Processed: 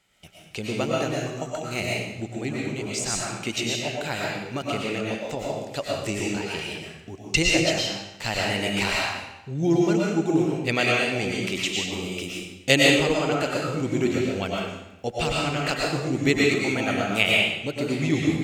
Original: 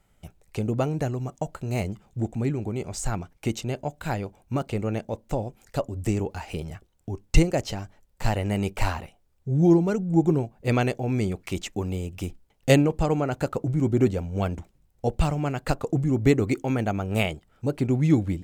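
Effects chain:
meter weighting curve D
comb and all-pass reverb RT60 0.89 s, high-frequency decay 0.95×, pre-delay 75 ms, DRR −3.5 dB
level −3 dB

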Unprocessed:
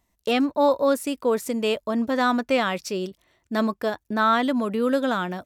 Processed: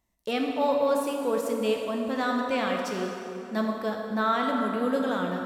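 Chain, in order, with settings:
dense smooth reverb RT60 3.1 s, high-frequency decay 0.65×, DRR 0.5 dB
level −7 dB

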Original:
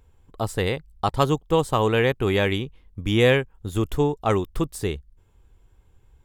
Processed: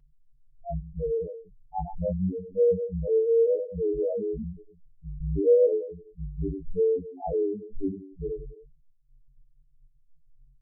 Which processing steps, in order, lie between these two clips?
four-comb reverb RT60 0.49 s, combs from 33 ms, DRR 8 dB
spectral peaks only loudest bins 1
time stretch by overlap-add 1.7×, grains 21 ms
level +5 dB

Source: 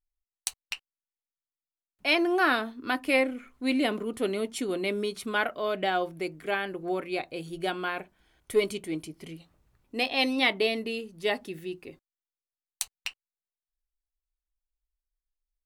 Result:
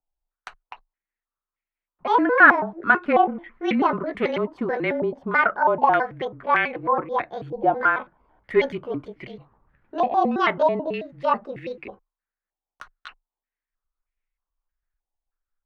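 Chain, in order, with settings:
pitch shifter gated in a rhythm +6.5 semitones, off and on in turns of 109 ms
frequency shifter −26 Hz
low-pass on a step sequencer 3.2 Hz 810–2,200 Hz
level +4.5 dB

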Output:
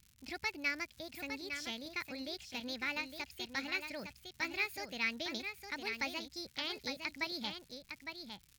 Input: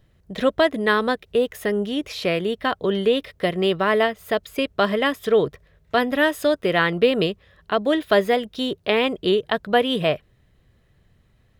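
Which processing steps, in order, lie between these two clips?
parametric band 1,600 Hz +8 dB 0.32 octaves
surface crackle 97 per second −30 dBFS
wrong playback speed 33 rpm record played at 45 rpm
guitar amp tone stack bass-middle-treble 6-0-2
on a send: single-tap delay 858 ms −7 dB
on the sum: level +1 dB

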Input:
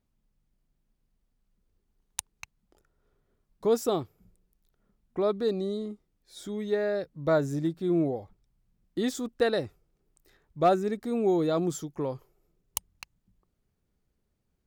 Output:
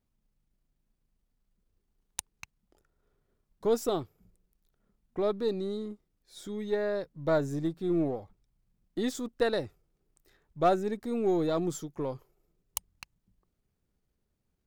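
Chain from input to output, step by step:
gain on one half-wave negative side −3 dB
level −1 dB

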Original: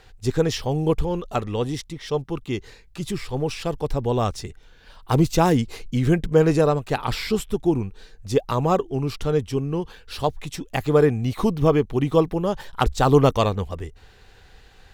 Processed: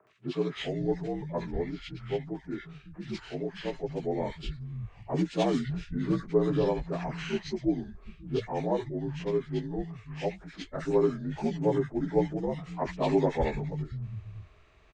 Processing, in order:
partials spread apart or drawn together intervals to 82%
three-band delay without the direct sound mids, highs, lows 70/550 ms, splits 150/1,400 Hz
level −6 dB

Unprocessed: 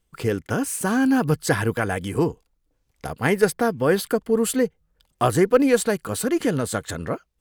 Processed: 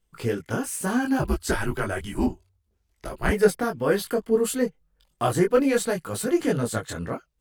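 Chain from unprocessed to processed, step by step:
multi-voice chorus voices 6, 0.64 Hz, delay 21 ms, depth 4.8 ms
0:01.19–0:03.32: frequency shifter −96 Hz

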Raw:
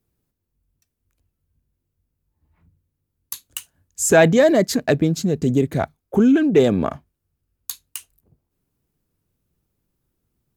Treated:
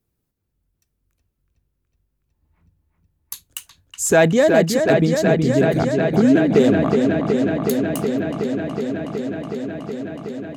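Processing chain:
delay with a low-pass on its return 370 ms, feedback 85%, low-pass 3,800 Hz, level −5 dB
level −1 dB

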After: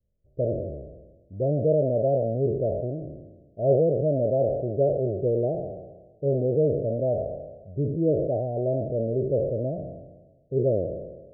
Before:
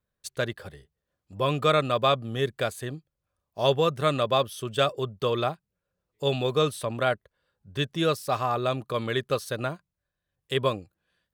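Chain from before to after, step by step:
peak hold with a decay on every bin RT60 1.24 s
Butterworth low-pass 680 Hz 96 dB per octave
low-shelf EQ 80 Hz +11.5 dB

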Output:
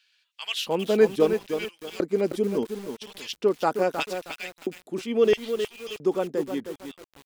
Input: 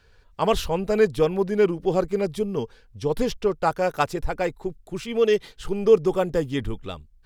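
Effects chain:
fade-out on the ending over 1.52 s
auto-filter high-pass square 0.75 Hz 260–2,800 Hz
feedback echo at a low word length 314 ms, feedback 35%, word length 6 bits, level −7.5 dB
level −3 dB

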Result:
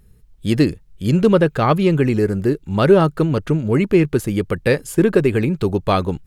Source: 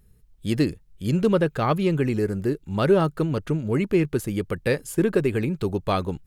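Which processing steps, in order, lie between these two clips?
high-shelf EQ 7,300 Hz −4 dB
level +6.5 dB

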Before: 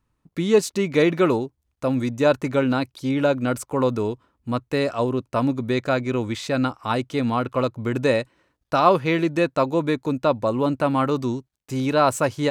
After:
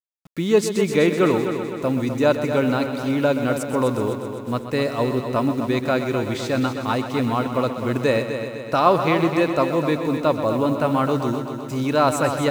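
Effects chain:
bit reduction 8 bits
echo machine with several playback heads 127 ms, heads first and second, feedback 61%, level −11 dB

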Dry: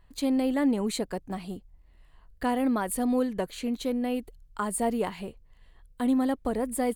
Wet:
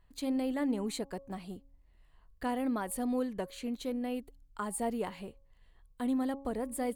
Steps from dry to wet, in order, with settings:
hum removal 275.2 Hz, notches 4
level −6.5 dB

